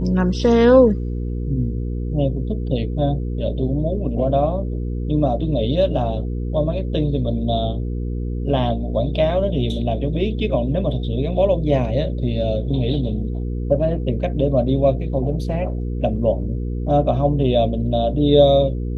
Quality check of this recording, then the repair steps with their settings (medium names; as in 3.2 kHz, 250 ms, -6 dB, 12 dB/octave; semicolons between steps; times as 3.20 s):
hum 60 Hz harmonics 8 -24 dBFS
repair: de-hum 60 Hz, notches 8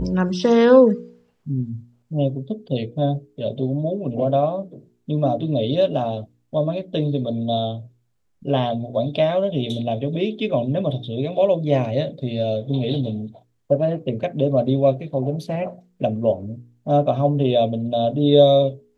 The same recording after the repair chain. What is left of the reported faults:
nothing left